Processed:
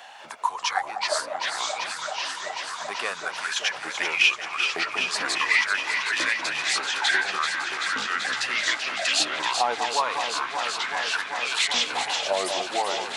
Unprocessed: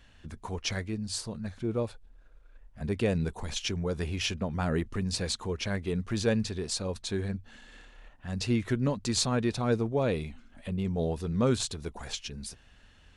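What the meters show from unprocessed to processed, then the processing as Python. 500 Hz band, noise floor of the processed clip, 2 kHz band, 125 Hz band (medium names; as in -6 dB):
-0.5 dB, -37 dBFS, +18.0 dB, under -20 dB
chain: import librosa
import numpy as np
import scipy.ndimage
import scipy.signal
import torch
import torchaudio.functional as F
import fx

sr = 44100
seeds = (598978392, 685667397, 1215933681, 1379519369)

p1 = fx.filter_lfo_highpass(x, sr, shape='saw_up', hz=0.42, low_hz=740.0, high_hz=3400.0, q=7.6)
p2 = fx.echo_pitch(p1, sr, ms=201, semitones=-4, count=2, db_per_echo=-3.0)
p3 = p2 + fx.echo_alternate(p2, sr, ms=192, hz=1200.0, feedback_pct=90, wet_db=-8.0, dry=0)
p4 = fx.band_squash(p3, sr, depth_pct=40)
y = F.gain(torch.from_numpy(p4), 4.0).numpy()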